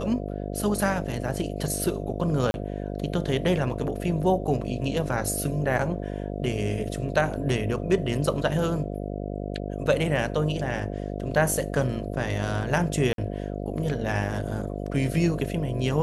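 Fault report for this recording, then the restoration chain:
buzz 50 Hz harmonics 14 -32 dBFS
2.51–2.54 gap 31 ms
13.13–13.18 gap 52 ms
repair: de-hum 50 Hz, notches 14; interpolate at 2.51, 31 ms; interpolate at 13.13, 52 ms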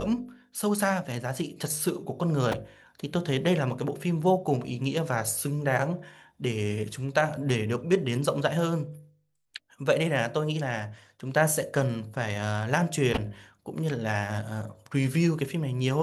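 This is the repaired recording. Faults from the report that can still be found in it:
none

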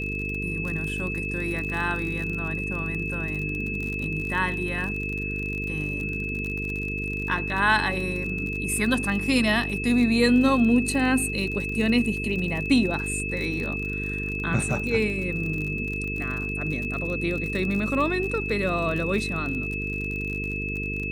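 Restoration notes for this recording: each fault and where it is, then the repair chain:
buzz 50 Hz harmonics 9 -32 dBFS
crackle 45/s -30 dBFS
tone 2600 Hz -30 dBFS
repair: de-click; de-hum 50 Hz, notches 9; notch 2600 Hz, Q 30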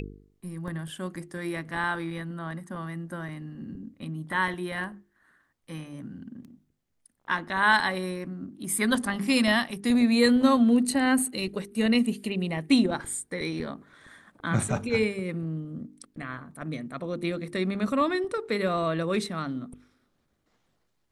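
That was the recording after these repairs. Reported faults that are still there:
none

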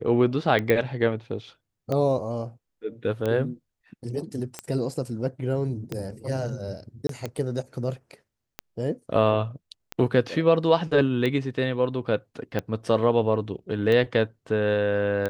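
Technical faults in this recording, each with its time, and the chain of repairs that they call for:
tick 45 rpm -15 dBFS
0.7 pop -10 dBFS
7.07–7.09 gap 23 ms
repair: de-click; interpolate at 7.07, 23 ms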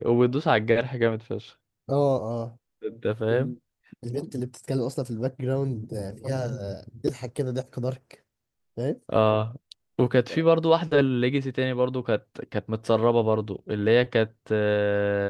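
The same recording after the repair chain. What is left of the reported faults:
none

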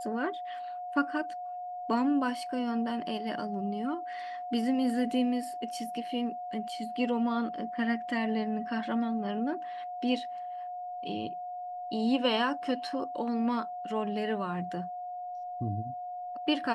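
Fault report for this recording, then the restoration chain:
tone 720 Hz -36 dBFS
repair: notch 720 Hz, Q 30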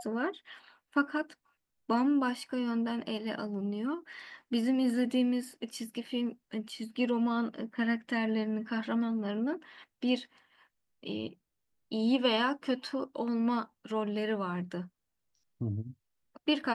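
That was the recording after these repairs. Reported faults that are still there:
none

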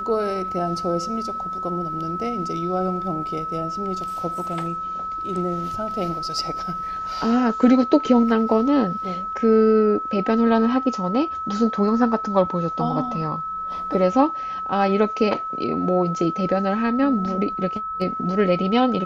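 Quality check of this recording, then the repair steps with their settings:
tone 1300 Hz -26 dBFS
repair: notch 1300 Hz, Q 30

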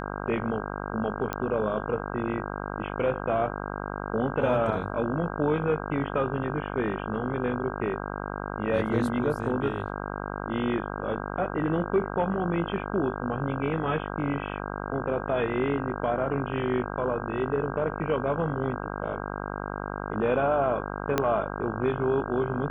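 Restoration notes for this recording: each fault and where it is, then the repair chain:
buzz 50 Hz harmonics 32 -34 dBFS
1.33 pop -15 dBFS
21.18 pop -9 dBFS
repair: de-click; de-hum 50 Hz, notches 32

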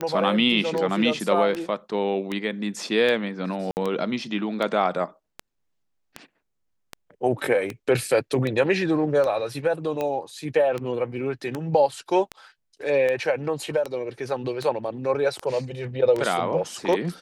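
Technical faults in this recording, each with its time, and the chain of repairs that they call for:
tick 78 rpm -15 dBFS
3.71–3.77 gap 59 ms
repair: de-click; interpolate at 3.71, 59 ms

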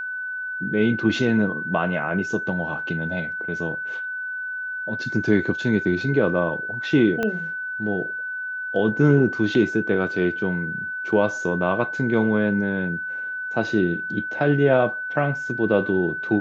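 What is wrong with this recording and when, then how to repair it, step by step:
tone 1500 Hz -27 dBFS
7.23 pop -12 dBFS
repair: de-click; notch 1500 Hz, Q 30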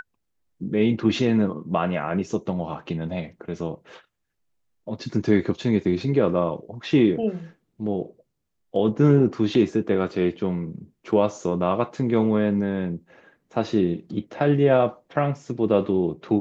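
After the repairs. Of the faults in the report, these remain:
7.23 pop

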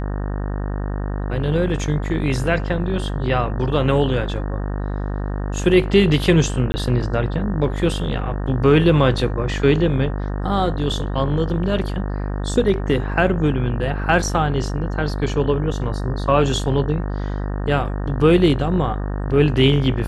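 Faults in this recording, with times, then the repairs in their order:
buzz 50 Hz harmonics 37 -24 dBFS
6.72–6.74 gap 20 ms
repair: de-hum 50 Hz, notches 37; interpolate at 6.72, 20 ms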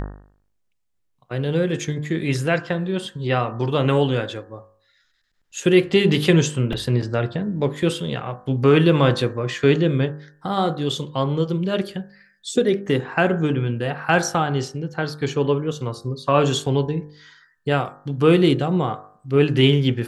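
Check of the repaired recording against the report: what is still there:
none

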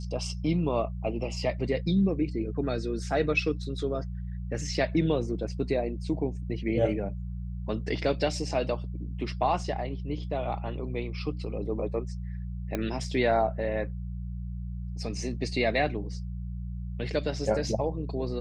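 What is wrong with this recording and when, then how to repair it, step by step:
hum 60 Hz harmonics 3 -35 dBFS
12.75 pop -16 dBFS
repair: de-click; de-hum 60 Hz, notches 3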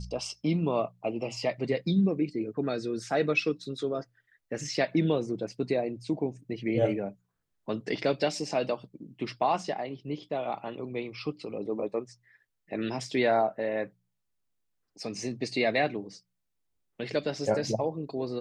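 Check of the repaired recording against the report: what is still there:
none

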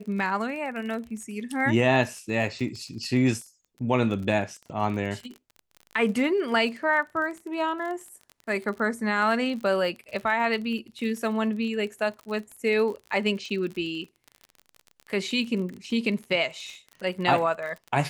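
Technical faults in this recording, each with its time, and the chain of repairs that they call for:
crackle 35/s -34 dBFS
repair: de-click

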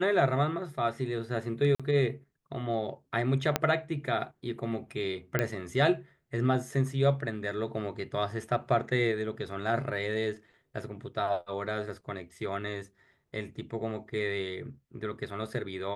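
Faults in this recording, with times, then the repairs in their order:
1.75–1.8 gap 46 ms
3.56 pop -9 dBFS
5.39 pop -13 dBFS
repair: de-click; interpolate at 1.75, 46 ms

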